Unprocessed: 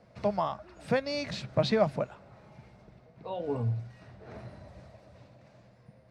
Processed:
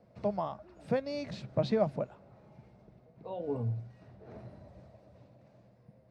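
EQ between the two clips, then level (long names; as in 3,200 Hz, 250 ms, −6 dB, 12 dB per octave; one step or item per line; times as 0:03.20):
low-shelf EQ 120 Hz −6.5 dB
parametric band 1,500 Hz −6.5 dB 2.1 octaves
high-shelf EQ 2,600 Hz −11 dB
0.0 dB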